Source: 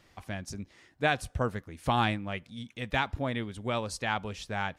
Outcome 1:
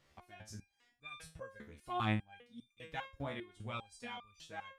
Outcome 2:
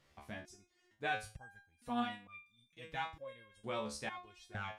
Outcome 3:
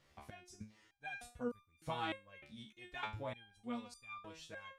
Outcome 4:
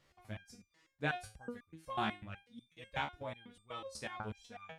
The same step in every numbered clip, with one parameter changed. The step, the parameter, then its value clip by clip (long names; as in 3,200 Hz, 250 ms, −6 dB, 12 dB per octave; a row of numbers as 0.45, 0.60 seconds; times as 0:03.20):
step-sequenced resonator, speed: 5, 2.2, 3.3, 8.1 Hertz